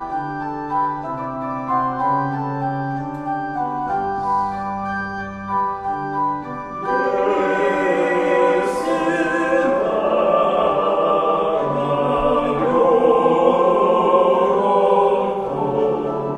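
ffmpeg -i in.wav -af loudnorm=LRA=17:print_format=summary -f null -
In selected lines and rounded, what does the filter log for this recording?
Input Integrated:    -18.5 LUFS
Input True Peak:      -1.7 dBTP
Input LRA:             6.4 LU
Input Threshold:     -28.5 LUFS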